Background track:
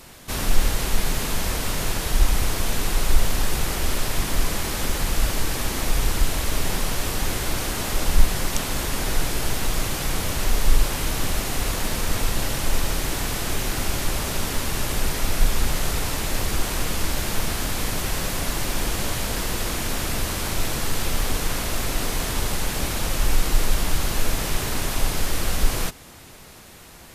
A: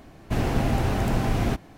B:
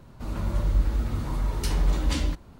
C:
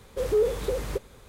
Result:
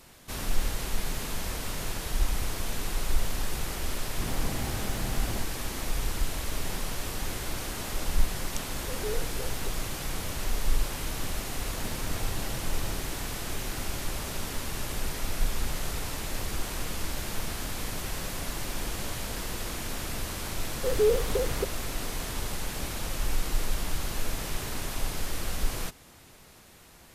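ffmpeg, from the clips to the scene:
ffmpeg -i bed.wav -i cue0.wav -i cue1.wav -i cue2.wav -filter_complex "[1:a]asplit=2[link_01][link_02];[3:a]asplit=2[link_03][link_04];[0:a]volume=-8.5dB[link_05];[link_01]atrim=end=1.77,asetpts=PTS-STARTPTS,volume=-12dB,afade=type=in:duration=0.004:curve=hsin,afade=type=out:start_time=1.766:duration=0.004:curve=hsin,adelay=171549S[link_06];[link_03]atrim=end=1.28,asetpts=PTS-STARTPTS,volume=-13dB,afade=type=in:duration=0.004:curve=hsin,afade=type=out:start_time=1.276:duration=0.004:curve=hsin,adelay=8710[link_07];[link_02]atrim=end=1.77,asetpts=PTS-STARTPTS,volume=-17.5dB,afade=type=in:duration=0.004:curve=hsin,afade=type=out:start_time=1.766:duration=0.004:curve=hsin,adelay=11470[link_08];[link_04]atrim=end=1.28,asetpts=PTS-STARTPTS,volume=-0.5dB,afade=type=in:duration=0.004:curve=hsin,afade=type=out:start_time=1.276:duration=0.004:curve=hsin,adelay=20670[link_09];[link_05][link_06][link_07][link_08][link_09]amix=inputs=5:normalize=0" out.wav

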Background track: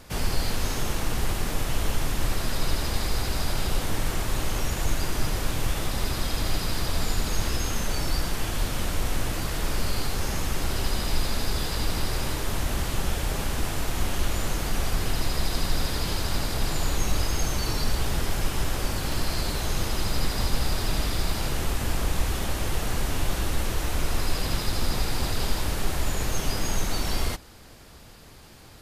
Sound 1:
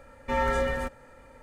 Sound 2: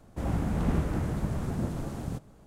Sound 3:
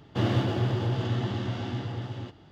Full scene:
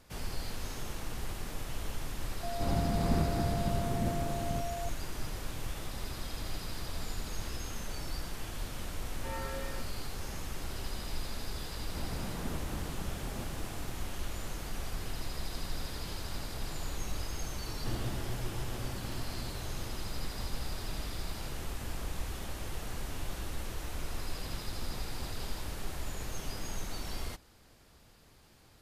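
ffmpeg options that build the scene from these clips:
ffmpeg -i bed.wav -i cue0.wav -i cue1.wav -i cue2.wav -filter_complex "[2:a]asplit=2[link_01][link_02];[0:a]volume=-12dB[link_03];[link_01]aeval=exprs='val(0)+0.02*sin(2*PI*690*n/s)':channel_layout=same[link_04];[link_02]lowshelf=frequency=320:gain=-6[link_05];[link_04]atrim=end=2.46,asetpts=PTS-STARTPTS,volume=-2.5dB,afade=type=in:duration=0.004:curve=hsin,afade=type=out:start_time=2.456:duration=0.004:curve=hsin,adelay=2430[link_06];[1:a]atrim=end=1.42,asetpts=PTS-STARTPTS,volume=-15dB,afade=type=in:duration=0.004:curve=hsin,afade=type=out:start_time=1.416:duration=0.004:curve=hsin,adelay=8950[link_07];[link_05]atrim=end=2.46,asetpts=PTS-STARTPTS,volume=-8dB,afade=type=in:duration=0.004:curve=hsin,afade=type=out:start_time=2.456:duration=0.004:curve=hsin,adelay=11770[link_08];[3:a]atrim=end=2.51,asetpts=PTS-STARTPTS,volume=-14dB,afade=type=in:duration=0.004:curve=hsin,afade=type=out:start_time=2.506:duration=0.004:curve=hsin,adelay=17690[link_09];[link_03][link_06][link_07][link_08][link_09]amix=inputs=5:normalize=0" out.wav

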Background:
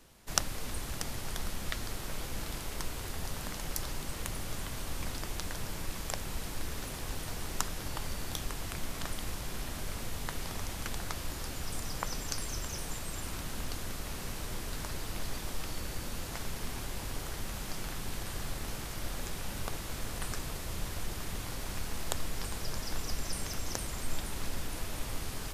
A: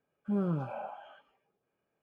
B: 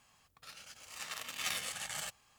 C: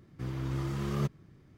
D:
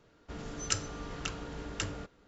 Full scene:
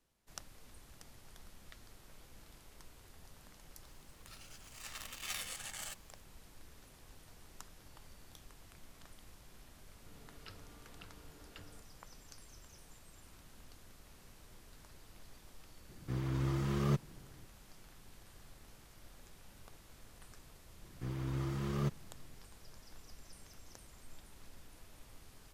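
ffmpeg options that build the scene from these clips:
ffmpeg -i bed.wav -i cue0.wav -i cue1.wav -i cue2.wav -i cue3.wav -filter_complex "[3:a]asplit=2[link_01][link_02];[0:a]volume=-19.5dB[link_03];[2:a]highshelf=frequency=7600:gain=5[link_04];[4:a]aresample=11025,aresample=44100[link_05];[link_04]atrim=end=2.38,asetpts=PTS-STARTPTS,volume=-6dB,afade=type=in:duration=0.004:curve=hsin,afade=type=out:start_time=2.376:duration=0.004:curve=hsin,adelay=3840[link_06];[link_05]atrim=end=2.27,asetpts=PTS-STARTPTS,volume=-18dB,afade=type=in:duration=0.004:curve=hsin,afade=type=out:start_time=2.266:duration=0.004:curve=hsin,adelay=9760[link_07];[link_01]atrim=end=1.57,asetpts=PTS-STARTPTS,volume=-1dB,afade=type=in:duration=0.004:curve=hsin,afade=type=out:start_time=1.566:duration=0.004:curve=hsin,adelay=15890[link_08];[link_02]atrim=end=1.57,asetpts=PTS-STARTPTS,volume=-4dB,afade=type=in:duration=0.004:curve=hsin,afade=type=out:start_time=1.566:duration=0.004:curve=hsin,adelay=20820[link_09];[link_03][link_06][link_07][link_08][link_09]amix=inputs=5:normalize=0" out.wav

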